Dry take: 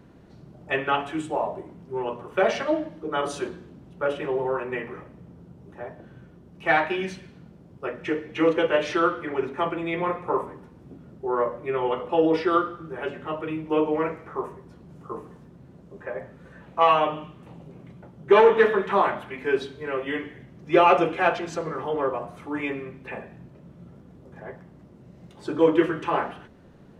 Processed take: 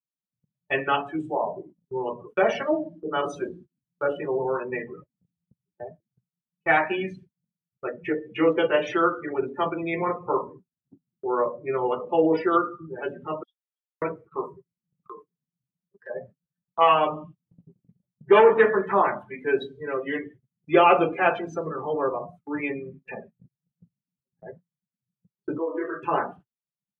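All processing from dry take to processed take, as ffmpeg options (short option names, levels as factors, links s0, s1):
-filter_complex "[0:a]asettb=1/sr,asplit=3[s0][s1][s2];[s0]atrim=end=13.434[s3];[s1]atrim=start=13.43:end=14.02,asetpts=PTS-STARTPTS,afade=t=in:d=0.004:c=qsin,afade=t=out:st=0.586:d=0.004:c=qsin,asuperpass=centerf=4400:order=20:qfactor=1.6,aecho=1:1:6.4:0.76,atrim=end_sample=26019[s4];[s2]atrim=start=14.016[s5];[s3][s4]acrossfade=d=0.004:c1=hsin:c2=qsin[s6];[s6][s5]acrossfade=d=0.004:c1=qsin:c2=hsin,asettb=1/sr,asplit=3[s7][s8][s9];[s7]atrim=end=15.014[s10];[s8]atrim=start=15.01:end=16.1,asetpts=PTS-STARTPTS,afade=t=in:d=0.004:c=qsin,afade=t=out:st=1.086:d=0.004:c=qsin,acompressor=threshold=0.00794:ratio=2.5:attack=3.2:release=140:knee=1:detection=peak,equalizer=f=1800:t=o:w=2.3:g=8[s11];[s9]atrim=start=16.096[s12];[s10][s11]acrossfade=d=0.004:c1=hsin:c2=qsin[s13];[s13][s12]acrossfade=d=0.004:c1=qsin:c2=hsin,asettb=1/sr,asplit=3[s14][s15][s16];[s14]atrim=end=25.584[s17];[s15]atrim=start=25.58:end=26.03,asetpts=PTS-STARTPTS,afade=t=in:d=0.004:c=qsin,afade=t=out:st=0.446:d=0.004:c=qsin,acrossover=split=360 2600:gain=0.141 1 0.0891[s18][s19][s20];[s18][s19][s20]amix=inputs=3:normalize=0,acompressor=threshold=0.0447:ratio=4:attack=3.2:release=140:knee=1:detection=peak,asplit=2[s21][s22];[s22]adelay=24,volume=0.75[s23];[s21][s23]amix=inputs=2:normalize=0,atrim=end_sample=19845[s24];[s16]atrim=start=26.026[s25];[s17][s24]acrossfade=d=0.004:c1=hsin:c2=qsin[s26];[s26][s25]acrossfade=d=0.004:c1=qsin:c2=hsin,afftdn=nr=28:nf=-32,agate=range=0.0251:threshold=0.00562:ratio=16:detection=peak,highshelf=f=4900:g=7.5"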